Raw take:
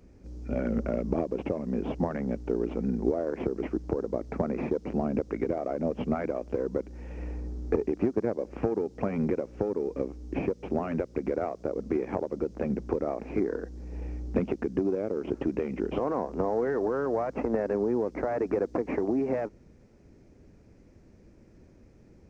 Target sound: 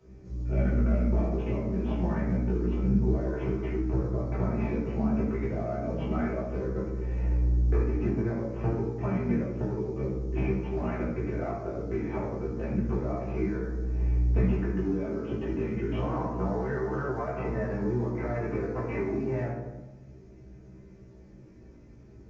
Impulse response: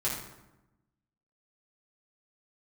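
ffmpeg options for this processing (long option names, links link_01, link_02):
-filter_complex "[1:a]atrim=start_sample=2205[link_01];[0:a][link_01]afir=irnorm=-1:irlink=0,flanger=delay=15.5:depth=2.2:speed=0.29,acrossover=split=250|910[link_02][link_03][link_04];[link_03]acompressor=threshold=-34dB:ratio=6[link_05];[link_02][link_05][link_04]amix=inputs=3:normalize=0,aresample=16000,aresample=44100,volume=-1.5dB"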